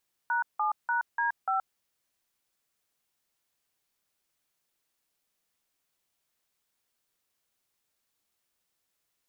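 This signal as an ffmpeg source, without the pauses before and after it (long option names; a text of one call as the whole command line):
ffmpeg -f lavfi -i "aevalsrc='0.0422*clip(min(mod(t,0.294),0.124-mod(t,0.294))/0.002,0,1)*(eq(floor(t/0.294),0)*(sin(2*PI*941*mod(t,0.294))+sin(2*PI*1477*mod(t,0.294)))+eq(floor(t/0.294),1)*(sin(2*PI*852*mod(t,0.294))+sin(2*PI*1209*mod(t,0.294)))+eq(floor(t/0.294),2)*(sin(2*PI*941*mod(t,0.294))+sin(2*PI*1477*mod(t,0.294)))+eq(floor(t/0.294),3)*(sin(2*PI*941*mod(t,0.294))+sin(2*PI*1633*mod(t,0.294)))+eq(floor(t/0.294),4)*(sin(2*PI*770*mod(t,0.294))+sin(2*PI*1336*mod(t,0.294))))':duration=1.47:sample_rate=44100" out.wav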